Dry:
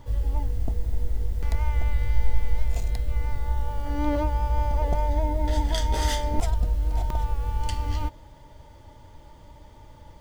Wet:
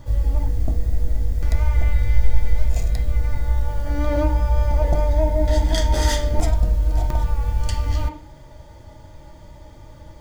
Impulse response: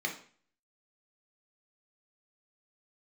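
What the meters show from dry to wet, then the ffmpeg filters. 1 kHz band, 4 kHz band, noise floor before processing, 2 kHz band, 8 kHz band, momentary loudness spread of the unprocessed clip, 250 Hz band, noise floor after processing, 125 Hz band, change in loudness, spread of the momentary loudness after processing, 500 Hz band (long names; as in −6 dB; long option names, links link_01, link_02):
+0.5 dB, +4.0 dB, −49 dBFS, +5.0 dB, +5.5 dB, 5 LU, +4.0 dB, −43 dBFS, +6.0 dB, +5.5 dB, 5 LU, +7.0 dB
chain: -filter_complex "[0:a]asplit=2[link_01][link_02];[1:a]atrim=start_sample=2205,lowpass=6000[link_03];[link_02][link_03]afir=irnorm=-1:irlink=0,volume=-6dB[link_04];[link_01][link_04]amix=inputs=2:normalize=0,volume=4dB"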